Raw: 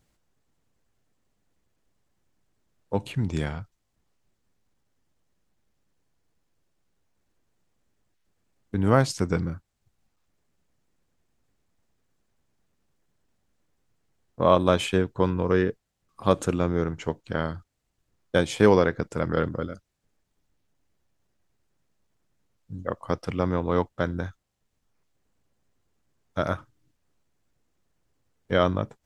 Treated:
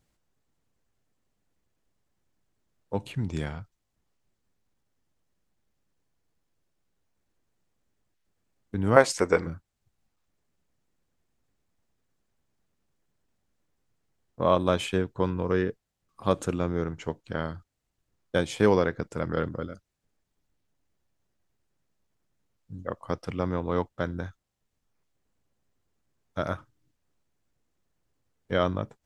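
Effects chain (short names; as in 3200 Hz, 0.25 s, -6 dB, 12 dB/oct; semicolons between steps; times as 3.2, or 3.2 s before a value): 8.96–9.47 ten-band EQ 125 Hz -12 dB, 500 Hz +11 dB, 1000 Hz +6 dB, 2000 Hz +10 dB, 8000 Hz +7 dB; gain -3.5 dB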